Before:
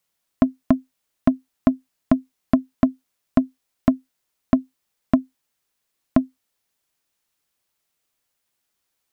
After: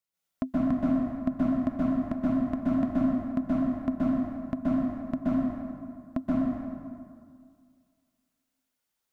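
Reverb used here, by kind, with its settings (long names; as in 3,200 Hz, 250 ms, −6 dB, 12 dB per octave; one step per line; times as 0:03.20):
dense smooth reverb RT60 2.1 s, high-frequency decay 0.6×, pre-delay 115 ms, DRR −8.5 dB
level −14 dB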